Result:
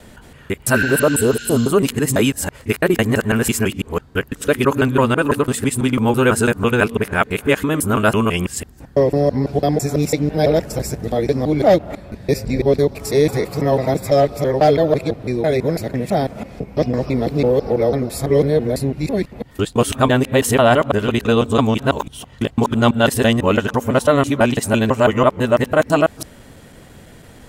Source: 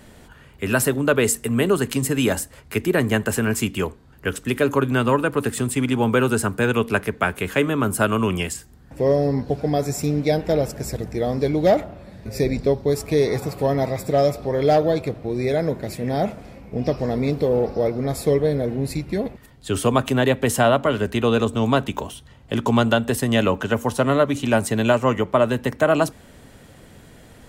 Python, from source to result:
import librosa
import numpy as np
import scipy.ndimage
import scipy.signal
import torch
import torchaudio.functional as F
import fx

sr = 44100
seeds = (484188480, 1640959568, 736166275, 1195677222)

y = fx.local_reverse(x, sr, ms=166.0)
y = fx.spec_repair(y, sr, seeds[0], start_s=0.77, length_s=0.9, low_hz=1400.0, high_hz=7600.0, source='both')
y = y * 10.0 ** (4.0 / 20.0)